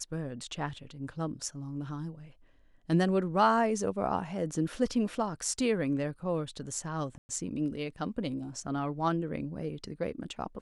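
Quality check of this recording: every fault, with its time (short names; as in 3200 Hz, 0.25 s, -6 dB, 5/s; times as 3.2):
7.18–7.29 gap 0.11 s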